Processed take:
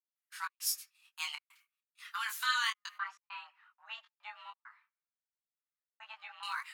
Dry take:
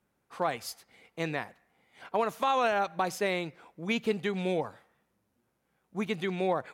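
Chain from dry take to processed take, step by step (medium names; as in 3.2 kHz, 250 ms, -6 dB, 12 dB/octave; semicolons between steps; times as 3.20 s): 2.96–6.43 s: low-pass 1.1 kHz 12 dB/octave; gate -56 dBFS, range -19 dB; high-pass 800 Hz 12 dB/octave; tilt EQ +4 dB/octave; frequency shift +440 Hz; trance gate ".xx.xxxxx" 100 bpm -60 dB; detune thickener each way 10 cents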